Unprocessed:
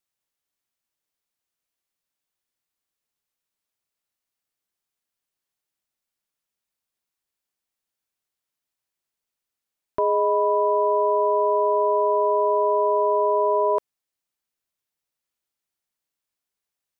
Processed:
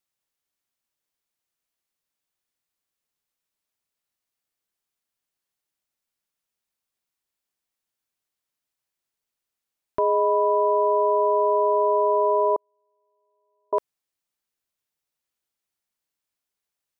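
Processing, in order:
0:12.56–0:13.73: noise gate −6 dBFS, range −51 dB

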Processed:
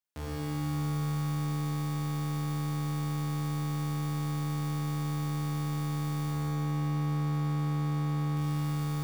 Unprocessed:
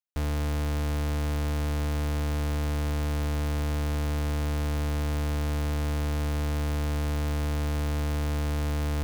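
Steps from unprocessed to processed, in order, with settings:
high-pass filter 72 Hz 24 dB per octave
reverb reduction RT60 1.7 s
0:06.30–0:08.37: low-pass filter 2,300 Hz 6 dB per octave
brickwall limiter −30.5 dBFS, peak gain reduction 9.5 dB
four-comb reverb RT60 2.1 s, combs from 26 ms, DRR −4.5 dB
feedback echo at a low word length 114 ms, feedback 80%, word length 9 bits, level −7 dB

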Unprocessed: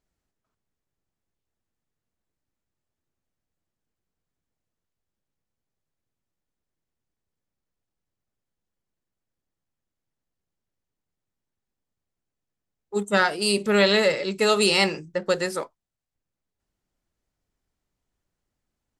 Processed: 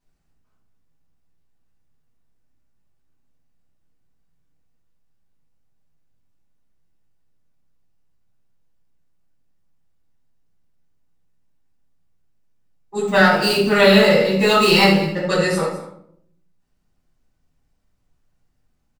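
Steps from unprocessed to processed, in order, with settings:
0:13.07–0:15.24: running median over 5 samples
single-tap delay 204 ms −16 dB
rectangular room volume 960 cubic metres, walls furnished, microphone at 9.6 metres
level −3.5 dB

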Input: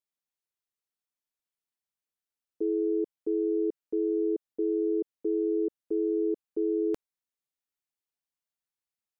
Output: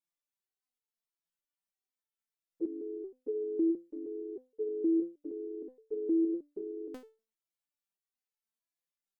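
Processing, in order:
pitch-shifted copies added −3 semitones −17 dB
step-sequenced resonator 6.4 Hz 170–440 Hz
level +8.5 dB

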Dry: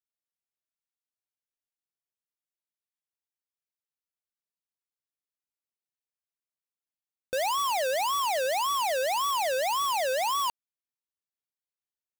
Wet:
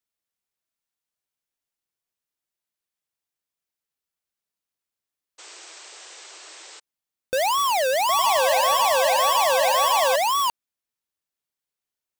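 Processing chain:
0:05.38–0:06.80: sound drawn into the spectrogram noise 310–8,500 Hz −50 dBFS
0:07.96–0:10.16: bouncing-ball delay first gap 130 ms, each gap 0.75×, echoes 5
level +6 dB

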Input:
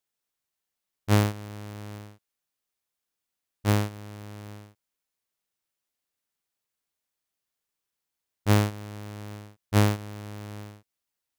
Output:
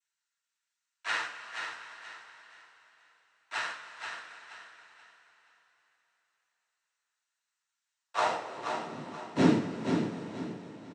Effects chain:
parametric band 4,800 Hz −13 dB 2.8 octaves
half-wave rectification
high-pass filter sweep 1,400 Hz → 230 Hz, 0:08.21–0:09.28
cochlear-implant simulation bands 12
speed change +4%
repeating echo 479 ms, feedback 31%, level −6.5 dB
coupled-rooms reverb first 0.31 s, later 4.2 s, from −20 dB, DRR −1 dB
level +1 dB

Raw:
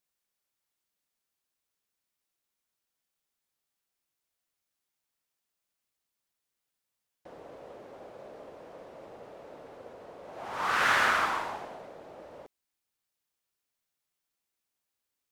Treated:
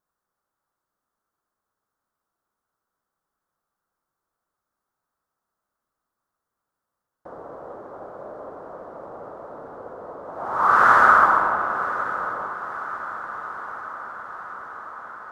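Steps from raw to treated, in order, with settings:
high shelf with overshoot 1,800 Hz −11.5 dB, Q 3
feedback delay with all-pass diffusion 1,027 ms, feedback 70%, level −14 dB
spring reverb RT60 3.4 s, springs 59 ms, chirp 65 ms, DRR 7.5 dB
level +7 dB

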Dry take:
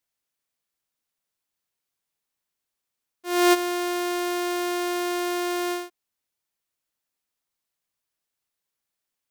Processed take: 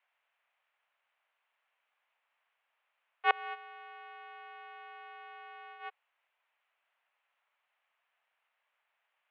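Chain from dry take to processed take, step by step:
gate with flip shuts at −23 dBFS, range −30 dB
single-sideband voice off tune +69 Hz 560–2,800 Hz
level +12 dB

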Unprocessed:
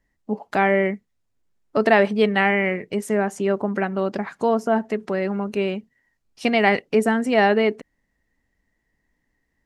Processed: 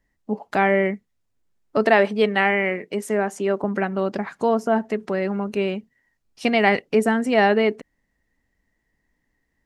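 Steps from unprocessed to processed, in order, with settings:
0:01.86–0:03.64: high-pass filter 210 Hz

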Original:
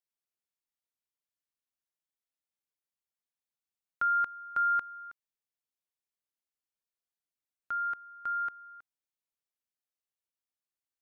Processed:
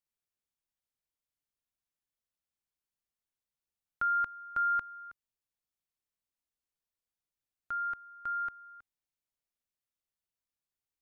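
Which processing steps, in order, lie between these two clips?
low-shelf EQ 150 Hz +11.5 dB
level −2 dB

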